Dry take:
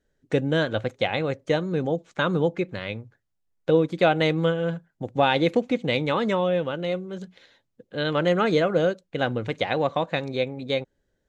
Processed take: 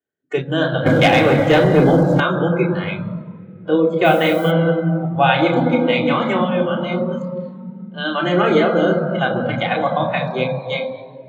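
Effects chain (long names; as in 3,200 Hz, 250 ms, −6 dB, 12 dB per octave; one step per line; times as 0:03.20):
convolution reverb RT60 3.6 s, pre-delay 3 ms, DRR −2.5 dB
0:04.04–0:04.50: background noise violet −36 dBFS
high-pass filter 170 Hz 12 dB per octave
0:00.86–0:02.20: leveller curve on the samples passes 2
noise reduction from a noise print of the clip's start 16 dB
level −5 dB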